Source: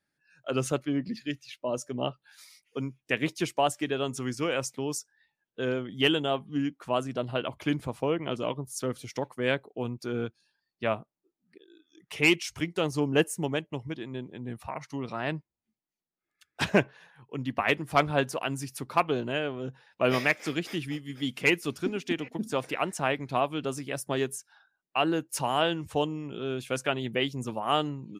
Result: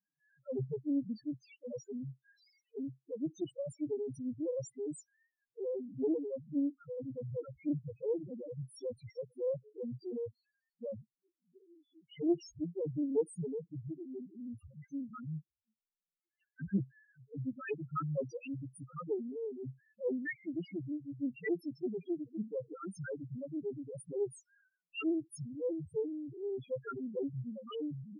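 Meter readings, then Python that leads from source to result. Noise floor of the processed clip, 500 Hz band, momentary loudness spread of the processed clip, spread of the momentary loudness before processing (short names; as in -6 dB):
under -85 dBFS, -8.0 dB, 11 LU, 11 LU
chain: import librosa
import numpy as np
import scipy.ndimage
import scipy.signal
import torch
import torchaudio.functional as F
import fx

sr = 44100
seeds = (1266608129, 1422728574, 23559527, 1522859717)

y = scipy.signal.sosfilt(scipy.signal.cheby1(3, 1.0, [530.0, 1300.0], 'bandstop', fs=sr, output='sos'), x)
y = fx.spec_topn(y, sr, count=1)
y = fx.doppler_dist(y, sr, depth_ms=0.23)
y = y * librosa.db_to_amplitude(2.0)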